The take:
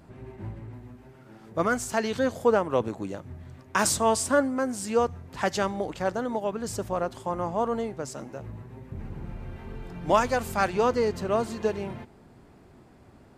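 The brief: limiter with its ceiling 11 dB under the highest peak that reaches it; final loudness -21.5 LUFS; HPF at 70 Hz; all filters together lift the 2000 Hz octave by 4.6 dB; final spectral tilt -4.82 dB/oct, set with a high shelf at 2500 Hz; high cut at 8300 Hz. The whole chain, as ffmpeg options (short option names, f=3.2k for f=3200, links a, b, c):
-af "highpass=70,lowpass=8.3k,equalizer=f=2k:t=o:g=8.5,highshelf=f=2.5k:g=-4.5,volume=9.5dB,alimiter=limit=-8dB:level=0:latency=1"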